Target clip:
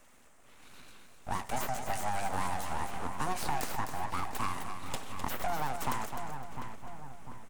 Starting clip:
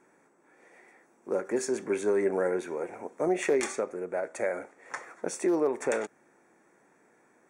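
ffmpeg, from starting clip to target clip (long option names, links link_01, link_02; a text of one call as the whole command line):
ffmpeg -i in.wav -filter_complex "[0:a]crystalizer=i=1.5:c=0,aeval=exprs='abs(val(0))':channel_layout=same,asplit=2[link_01][link_02];[link_02]adelay=699,lowpass=frequency=1900:poles=1,volume=-14.5dB,asplit=2[link_03][link_04];[link_04]adelay=699,lowpass=frequency=1900:poles=1,volume=0.48,asplit=2[link_05][link_06];[link_06]adelay=699,lowpass=frequency=1900:poles=1,volume=0.48,asplit=2[link_07][link_08];[link_08]adelay=699,lowpass=frequency=1900:poles=1,volume=0.48[link_09];[link_03][link_05][link_07][link_09]amix=inputs=4:normalize=0[link_10];[link_01][link_10]amix=inputs=2:normalize=0,acrossover=split=370|1700|4000[link_11][link_12][link_13][link_14];[link_11]acompressor=threshold=-40dB:ratio=4[link_15];[link_12]acompressor=threshold=-38dB:ratio=4[link_16];[link_13]acompressor=threshold=-54dB:ratio=4[link_17];[link_14]acompressor=threshold=-46dB:ratio=4[link_18];[link_15][link_16][link_17][link_18]amix=inputs=4:normalize=0,equalizer=frequency=250:width_type=o:width=0.25:gain=7,asplit=2[link_19][link_20];[link_20]aecho=0:1:256|512|768:0.398|0.115|0.0335[link_21];[link_19][link_21]amix=inputs=2:normalize=0,volume=4dB" out.wav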